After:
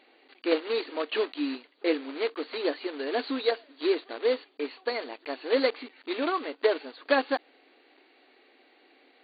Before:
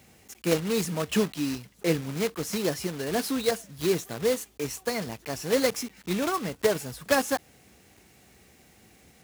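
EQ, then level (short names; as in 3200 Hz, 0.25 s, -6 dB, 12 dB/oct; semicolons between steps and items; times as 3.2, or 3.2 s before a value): brick-wall FIR band-pass 250–4700 Hz; 0.0 dB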